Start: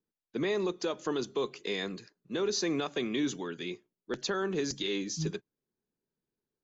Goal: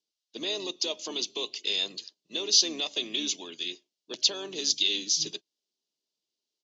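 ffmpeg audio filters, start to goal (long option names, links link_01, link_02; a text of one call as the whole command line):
ffmpeg -i in.wav -filter_complex "[0:a]aexciter=amount=11.8:drive=7.2:freq=3400,highpass=270,equalizer=frequency=320:width_type=q:width=4:gain=4,equalizer=frequency=630:width_type=q:width=4:gain=9,equalizer=frequency=960:width_type=q:width=4:gain=4,equalizer=frequency=1400:width_type=q:width=4:gain=-7,equalizer=frequency=2800:width_type=q:width=4:gain=9,lowpass=frequency=5500:width=0.5412,lowpass=frequency=5500:width=1.3066,asplit=2[link_01][link_02];[link_02]asetrate=33038,aresample=44100,atempo=1.33484,volume=-12dB[link_03];[link_01][link_03]amix=inputs=2:normalize=0,volume=-8dB" out.wav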